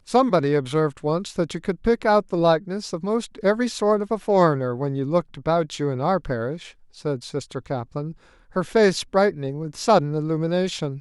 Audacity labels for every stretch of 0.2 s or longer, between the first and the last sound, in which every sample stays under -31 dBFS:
6.660000	7.050000	silence
8.120000	8.560000	silence